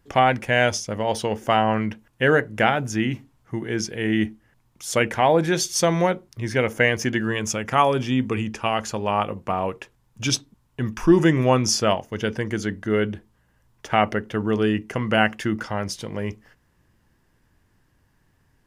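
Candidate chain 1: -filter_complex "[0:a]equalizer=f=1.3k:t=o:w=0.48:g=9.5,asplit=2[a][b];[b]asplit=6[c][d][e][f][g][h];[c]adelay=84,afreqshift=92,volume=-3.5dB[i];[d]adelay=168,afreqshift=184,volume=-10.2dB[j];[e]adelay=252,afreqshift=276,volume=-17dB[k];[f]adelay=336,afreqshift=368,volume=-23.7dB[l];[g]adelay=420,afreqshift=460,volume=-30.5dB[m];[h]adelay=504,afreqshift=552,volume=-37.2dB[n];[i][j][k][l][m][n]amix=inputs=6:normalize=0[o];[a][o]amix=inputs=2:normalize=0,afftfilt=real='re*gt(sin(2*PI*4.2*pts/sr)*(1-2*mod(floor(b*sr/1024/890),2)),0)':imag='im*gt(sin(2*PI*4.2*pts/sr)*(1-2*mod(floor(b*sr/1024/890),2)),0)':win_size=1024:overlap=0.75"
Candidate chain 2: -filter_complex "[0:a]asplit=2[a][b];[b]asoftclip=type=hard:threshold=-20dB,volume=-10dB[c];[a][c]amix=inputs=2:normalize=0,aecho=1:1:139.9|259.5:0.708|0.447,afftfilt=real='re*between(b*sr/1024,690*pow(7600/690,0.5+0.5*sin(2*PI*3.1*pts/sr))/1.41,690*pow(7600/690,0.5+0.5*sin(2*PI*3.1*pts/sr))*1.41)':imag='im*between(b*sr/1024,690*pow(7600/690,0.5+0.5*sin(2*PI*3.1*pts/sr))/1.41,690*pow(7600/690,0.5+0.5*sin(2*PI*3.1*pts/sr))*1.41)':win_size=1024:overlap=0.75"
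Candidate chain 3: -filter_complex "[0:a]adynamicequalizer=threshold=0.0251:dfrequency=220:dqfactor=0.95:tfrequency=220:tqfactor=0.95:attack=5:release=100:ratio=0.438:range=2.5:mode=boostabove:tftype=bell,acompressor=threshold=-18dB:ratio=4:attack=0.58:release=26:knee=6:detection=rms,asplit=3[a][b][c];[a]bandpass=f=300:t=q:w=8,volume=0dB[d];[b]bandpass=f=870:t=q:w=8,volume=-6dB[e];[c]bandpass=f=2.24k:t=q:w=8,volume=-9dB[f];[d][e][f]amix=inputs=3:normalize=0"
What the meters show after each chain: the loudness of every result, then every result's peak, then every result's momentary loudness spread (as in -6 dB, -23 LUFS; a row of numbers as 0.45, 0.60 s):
-22.0, -28.0, -37.0 LUFS; -3.5, -7.5, -20.0 dBFS; 12, 15, 9 LU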